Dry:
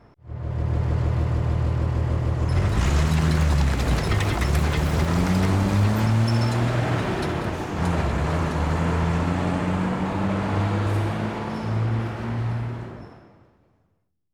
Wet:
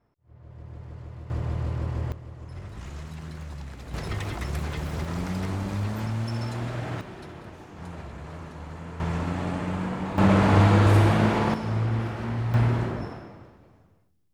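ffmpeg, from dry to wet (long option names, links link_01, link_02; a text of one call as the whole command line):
ffmpeg -i in.wav -af "asetnsamples=nb_out_samples=441:pad=0,asendcmd='1.3 volume volume -6dB;2.12 volume volume -18dB;3.94 volume volume -9dB;7.01 volume volume -16dB;9 volume volume -5.5dB;10.18 volume volume 5.5dB;11.54 volume volume -2dB;12.54 volume volume 7dB',volume=-18dB" out.wav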